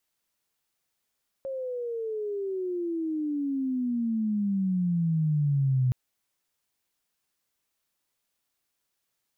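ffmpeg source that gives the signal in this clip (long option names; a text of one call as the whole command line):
ffmpeg -f lavfi -i "aevalsrc='pow(10,(-20.5+10*(t/4.47-1))/20)*sin(2*PI*544*4.47/(-25.5*log(2)/12)*(exp(-25.5*log(2)/12*t/4.47)-1))':duration=4.47:sample_rate=44100" out.wav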